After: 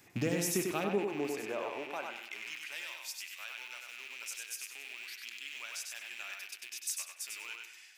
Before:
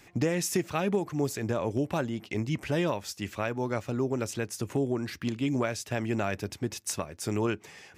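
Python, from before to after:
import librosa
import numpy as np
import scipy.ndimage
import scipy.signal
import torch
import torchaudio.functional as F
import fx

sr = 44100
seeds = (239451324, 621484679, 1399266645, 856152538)

y = fx.rattle_buzz(x, sr, strikes_db=-40.0, level_db=-27.0)
y = fx.high_shelf(y, sr, hz=11000.0, db=11.0)
y = fx.echo_feedback(y, sr, ms=97, feedback_pct=25, wet_db=-4)
y = fx.rev_spring(y, sr, rt60_s=1.2, pass_ms=(47, 60), chirp_ms=50, drr_db=9.5)
y = fx.filter_sweep_highpass(y, sr, from_hz=91.0, to_hz=2300.0, start_s=0.18, end_s=2.91, q=0.86)
y = fx.high_shelf(y, sr, hz=4700.0, db=-9.0, at=(0.84, 2.16))
y = F.gain(torch.from_numpy(y), -6.5).numpy()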